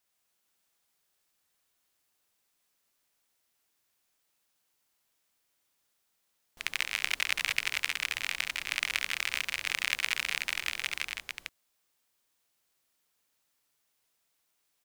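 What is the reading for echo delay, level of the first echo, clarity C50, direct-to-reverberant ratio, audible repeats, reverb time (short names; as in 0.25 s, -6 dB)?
70 ms, -8.0 dB, none, none, 3, none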